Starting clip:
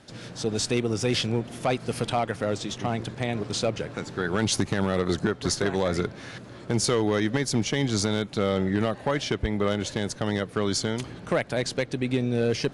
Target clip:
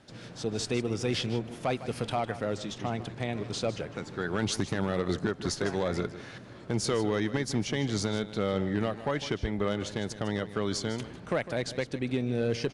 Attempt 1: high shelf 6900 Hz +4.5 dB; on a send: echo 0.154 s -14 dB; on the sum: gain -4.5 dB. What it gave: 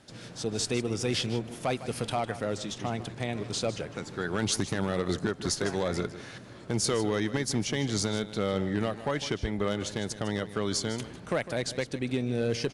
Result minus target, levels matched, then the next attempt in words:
8000 Hz band +4.5 dB
high shelf 6900 Hz -6 dB; on a send: echo 0.154 s -14 dB; on the sum: gain -4.5 dB

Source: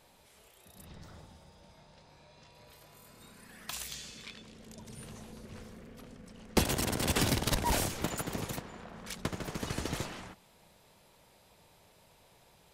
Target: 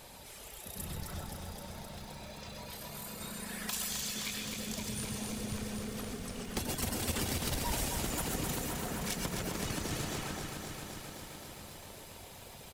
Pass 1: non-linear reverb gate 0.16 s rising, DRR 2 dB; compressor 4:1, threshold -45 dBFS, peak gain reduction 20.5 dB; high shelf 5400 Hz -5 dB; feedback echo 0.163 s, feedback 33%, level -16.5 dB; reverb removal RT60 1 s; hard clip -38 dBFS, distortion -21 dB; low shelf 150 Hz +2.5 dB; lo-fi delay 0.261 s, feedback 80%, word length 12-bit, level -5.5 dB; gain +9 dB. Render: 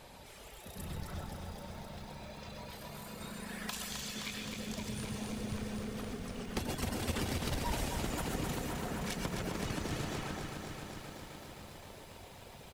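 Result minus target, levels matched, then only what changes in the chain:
8000 Hz band -5.0 dB
change: high shelf 5400 Hz +5.5 dB

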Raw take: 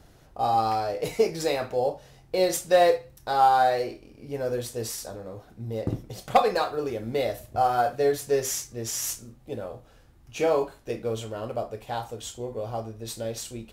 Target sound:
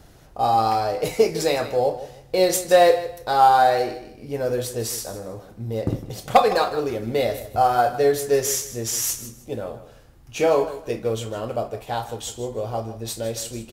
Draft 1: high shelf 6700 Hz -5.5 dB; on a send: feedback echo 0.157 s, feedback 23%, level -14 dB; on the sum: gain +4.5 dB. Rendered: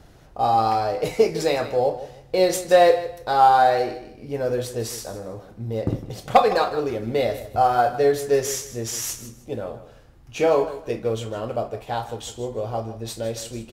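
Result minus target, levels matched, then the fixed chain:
8000 Hz band -4.0 dB
high shelf 6700 Hz +2.5 dB; on a send: feedback echo 0.157 s, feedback 23%, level -14 dB; on the sum: gain +4.5 dB

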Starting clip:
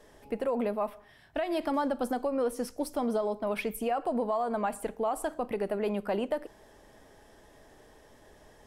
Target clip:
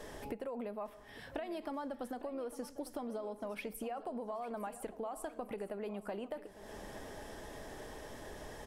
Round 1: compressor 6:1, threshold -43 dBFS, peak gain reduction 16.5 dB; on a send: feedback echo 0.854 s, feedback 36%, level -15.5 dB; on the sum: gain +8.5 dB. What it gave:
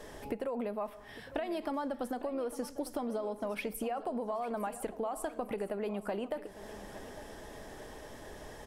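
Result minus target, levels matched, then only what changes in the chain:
compressor: peak gain reduction -5.5 dB
change: compressor 6:1, threshold -49.5 dBFS, peak gain reduction 21.5 dB

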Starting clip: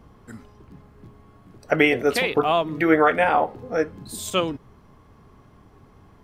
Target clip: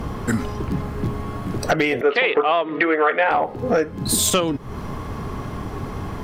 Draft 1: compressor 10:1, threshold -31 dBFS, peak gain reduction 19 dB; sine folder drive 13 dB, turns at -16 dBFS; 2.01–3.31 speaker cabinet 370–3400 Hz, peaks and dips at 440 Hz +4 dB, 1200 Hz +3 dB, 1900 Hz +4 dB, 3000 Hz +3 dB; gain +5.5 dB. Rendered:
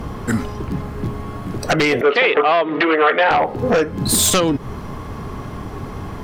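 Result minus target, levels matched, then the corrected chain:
compressor: peak gain reduction -6 dB
compressor 10:1, threshold -37.5 dBFS, peak gain reduction 25 dB; sine folder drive 13 dB, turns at -16 dBFS; 2.01–3.31 speaker cabinet 370–3400 Hz, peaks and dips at 440 Hz +4 dB, 1200 Hz +3 dB, 1900 Hz +4 dB, 3000 Hz +3 dB; gain +5.5 dB

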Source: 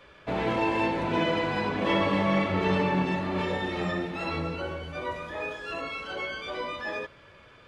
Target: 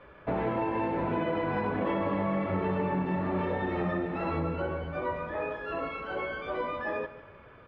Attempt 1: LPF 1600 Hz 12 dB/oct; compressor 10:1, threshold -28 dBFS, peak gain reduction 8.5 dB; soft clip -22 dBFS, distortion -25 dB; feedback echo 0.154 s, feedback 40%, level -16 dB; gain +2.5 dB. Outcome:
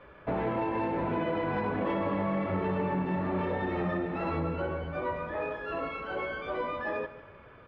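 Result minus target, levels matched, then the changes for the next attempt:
soft clip: distortion +17 dB
change: soft clip -13 dBFS, distortion -41 dB

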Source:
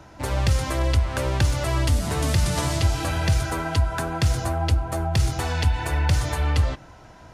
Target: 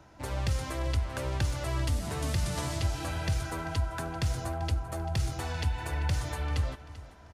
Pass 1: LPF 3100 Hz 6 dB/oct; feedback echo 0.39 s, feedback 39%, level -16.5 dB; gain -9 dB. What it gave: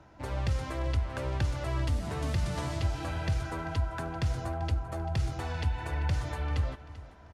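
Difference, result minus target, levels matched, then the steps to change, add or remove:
4000 Hz band -3.5 dB
remove: LPF 3100 Hz 6 dB/oct

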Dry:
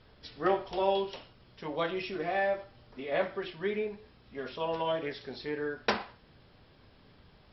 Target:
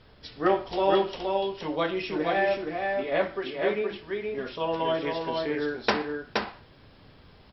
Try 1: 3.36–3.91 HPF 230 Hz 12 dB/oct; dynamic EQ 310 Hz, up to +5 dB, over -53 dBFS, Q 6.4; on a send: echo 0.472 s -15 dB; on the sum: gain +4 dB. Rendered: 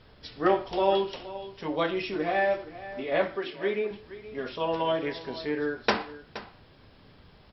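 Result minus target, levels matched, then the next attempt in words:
echo-to-direct -11.5 dB
3.36–3.91 HPF 230 Hz 12 dB/oct; dynamic EQ 310 Hz, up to +5 dB, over -53 dBFS, Q 6.4; on a send: echo 0.472 s -3.5 dB; on the sum: gain +4 dB

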